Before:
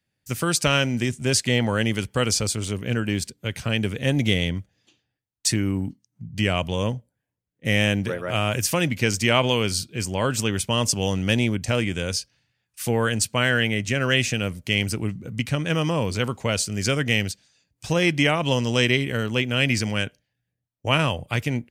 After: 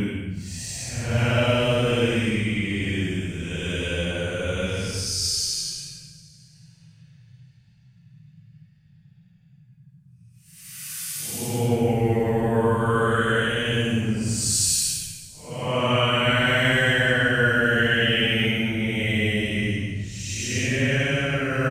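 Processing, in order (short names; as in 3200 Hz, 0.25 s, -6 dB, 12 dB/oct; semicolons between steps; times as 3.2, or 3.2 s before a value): band noise 110–170 Hz -51 dBFS; Paulstretch 8.8×, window 0.10 s, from 11.56; frequency-shifting echo 0.375 s, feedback 41%, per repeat -56 Hz, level -19 dB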